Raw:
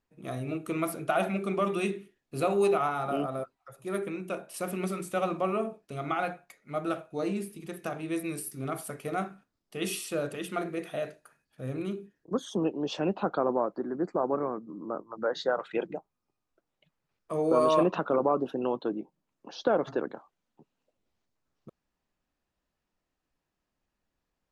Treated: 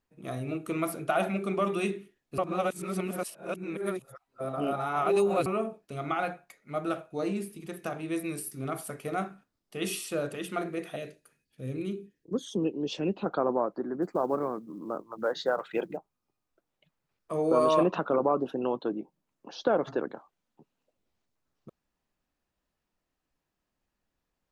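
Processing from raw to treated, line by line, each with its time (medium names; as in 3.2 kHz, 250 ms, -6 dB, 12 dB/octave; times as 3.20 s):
2.38–5.46 s: reverse
10.96–13.26 s: high-order bell 1 kHz -10.5 dB
14.02–15.97 s: companded quantiser 8-bit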